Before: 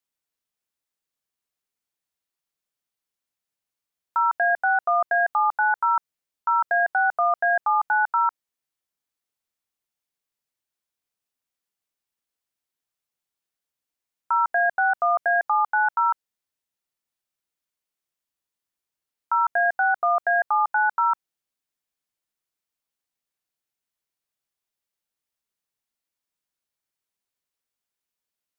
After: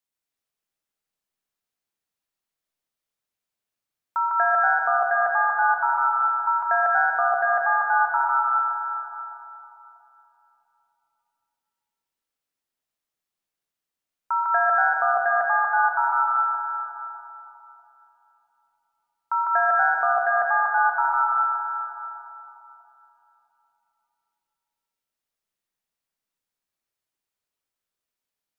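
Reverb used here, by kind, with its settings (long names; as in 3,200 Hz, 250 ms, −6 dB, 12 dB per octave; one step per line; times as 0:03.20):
comb and all-pass reverb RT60 3.4 s, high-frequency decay 0.45×, pre-delay 75 ms, DRR −1.5 dB
level −2.5 dB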